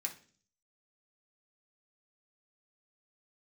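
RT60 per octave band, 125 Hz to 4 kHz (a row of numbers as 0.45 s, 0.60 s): 0.70 s, 0.65 s, 0.50 s, 0.35 s, 0.40 s, 0.50 s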